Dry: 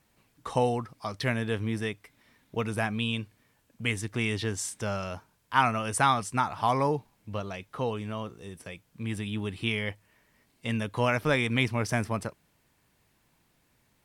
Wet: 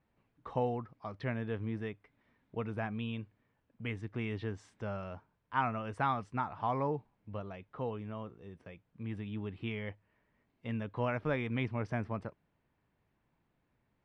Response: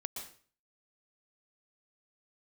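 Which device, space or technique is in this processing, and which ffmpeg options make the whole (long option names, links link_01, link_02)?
phone in a pocket: -af "lowpass=3100,highshelf=frequency=2100:gain=-9,volume=-6.5dB"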